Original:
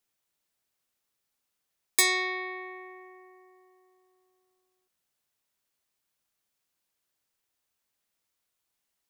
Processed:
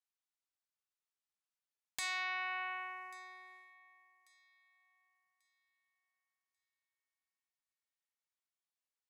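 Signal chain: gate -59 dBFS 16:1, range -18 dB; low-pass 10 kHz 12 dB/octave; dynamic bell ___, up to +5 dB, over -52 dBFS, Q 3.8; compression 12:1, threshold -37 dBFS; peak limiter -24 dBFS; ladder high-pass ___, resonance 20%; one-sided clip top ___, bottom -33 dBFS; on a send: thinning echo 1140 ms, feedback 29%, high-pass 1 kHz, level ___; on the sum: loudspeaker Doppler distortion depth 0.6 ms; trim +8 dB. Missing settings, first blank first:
850 Hz, 590 Hz, -40.5 dBFS, -21 dB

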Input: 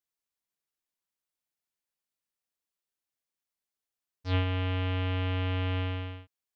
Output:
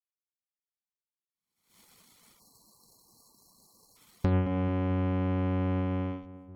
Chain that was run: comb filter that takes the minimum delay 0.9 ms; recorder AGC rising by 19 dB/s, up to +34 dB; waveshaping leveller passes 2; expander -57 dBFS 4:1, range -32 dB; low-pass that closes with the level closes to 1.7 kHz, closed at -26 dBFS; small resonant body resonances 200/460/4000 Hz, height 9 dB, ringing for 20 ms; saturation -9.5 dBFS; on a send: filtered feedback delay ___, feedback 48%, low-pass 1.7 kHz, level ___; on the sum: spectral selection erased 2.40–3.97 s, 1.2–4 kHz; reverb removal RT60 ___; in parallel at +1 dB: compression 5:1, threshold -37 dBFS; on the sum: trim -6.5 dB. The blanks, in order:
220 ms, -9.5 dB, 0.73 s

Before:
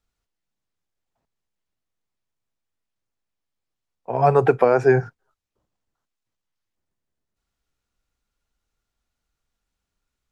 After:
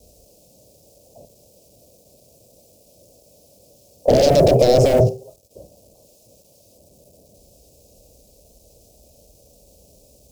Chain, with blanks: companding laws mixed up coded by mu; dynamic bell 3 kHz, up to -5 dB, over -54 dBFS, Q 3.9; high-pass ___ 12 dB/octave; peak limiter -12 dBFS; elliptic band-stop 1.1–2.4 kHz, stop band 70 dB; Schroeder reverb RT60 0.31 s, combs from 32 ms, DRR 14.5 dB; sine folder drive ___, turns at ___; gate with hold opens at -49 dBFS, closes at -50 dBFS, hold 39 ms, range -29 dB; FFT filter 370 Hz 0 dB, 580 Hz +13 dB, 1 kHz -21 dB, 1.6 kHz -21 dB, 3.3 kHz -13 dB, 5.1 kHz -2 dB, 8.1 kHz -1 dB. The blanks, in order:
52 Hz, 17 dB, -11 dBFS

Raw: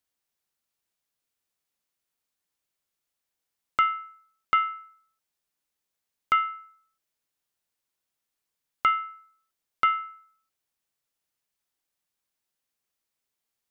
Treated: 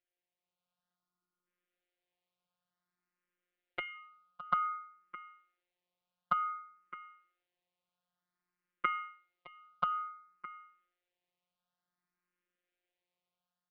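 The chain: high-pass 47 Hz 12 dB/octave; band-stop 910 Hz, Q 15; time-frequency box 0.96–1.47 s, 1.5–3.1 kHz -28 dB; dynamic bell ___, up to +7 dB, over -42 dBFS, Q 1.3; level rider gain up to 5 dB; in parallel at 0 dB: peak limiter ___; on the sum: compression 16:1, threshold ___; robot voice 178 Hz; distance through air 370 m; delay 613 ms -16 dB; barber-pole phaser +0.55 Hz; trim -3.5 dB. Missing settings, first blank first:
640 Hz, -15 dBFS, -15 dBFS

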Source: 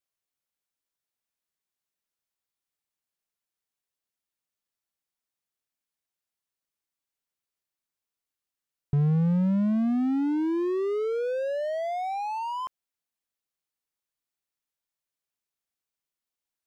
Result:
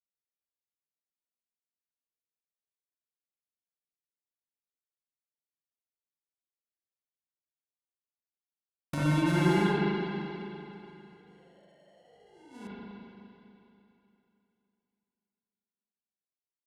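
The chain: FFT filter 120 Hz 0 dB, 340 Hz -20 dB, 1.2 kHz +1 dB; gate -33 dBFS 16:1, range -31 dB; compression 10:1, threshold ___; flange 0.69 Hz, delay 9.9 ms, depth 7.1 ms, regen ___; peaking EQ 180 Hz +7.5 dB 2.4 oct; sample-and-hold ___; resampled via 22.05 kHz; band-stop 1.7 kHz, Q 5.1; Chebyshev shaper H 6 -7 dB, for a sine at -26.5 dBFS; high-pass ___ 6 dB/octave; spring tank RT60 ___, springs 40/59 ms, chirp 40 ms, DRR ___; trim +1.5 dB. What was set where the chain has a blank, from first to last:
-39 dBFS, -74%, 36×, 110 Hz, 3 s, -9 dB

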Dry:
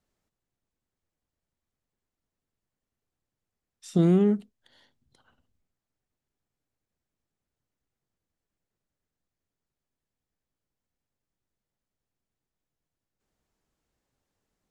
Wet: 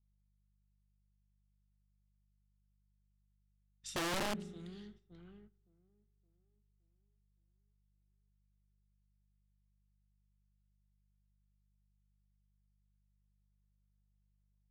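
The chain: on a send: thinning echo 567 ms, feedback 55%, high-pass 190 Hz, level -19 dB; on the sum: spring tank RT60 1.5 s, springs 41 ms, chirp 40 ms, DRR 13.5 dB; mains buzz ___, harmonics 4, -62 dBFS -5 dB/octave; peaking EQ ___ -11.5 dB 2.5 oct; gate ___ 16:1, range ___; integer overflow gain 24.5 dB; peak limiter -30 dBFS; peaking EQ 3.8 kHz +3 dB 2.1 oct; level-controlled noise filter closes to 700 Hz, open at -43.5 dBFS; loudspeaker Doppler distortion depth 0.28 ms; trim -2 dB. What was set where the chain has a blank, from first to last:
50 Hz, 510 Hz, -56 dBFS, -11 dB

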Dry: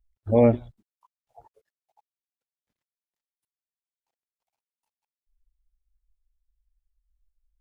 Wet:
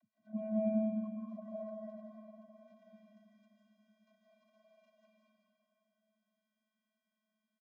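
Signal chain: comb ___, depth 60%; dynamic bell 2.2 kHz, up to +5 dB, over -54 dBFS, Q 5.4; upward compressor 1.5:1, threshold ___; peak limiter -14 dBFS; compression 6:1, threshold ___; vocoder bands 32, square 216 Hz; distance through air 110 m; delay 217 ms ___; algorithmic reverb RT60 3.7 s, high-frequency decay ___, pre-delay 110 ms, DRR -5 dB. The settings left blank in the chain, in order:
1.2 ms, -22 dBFS, -38 dBFS, -9.5 dB, 0.35×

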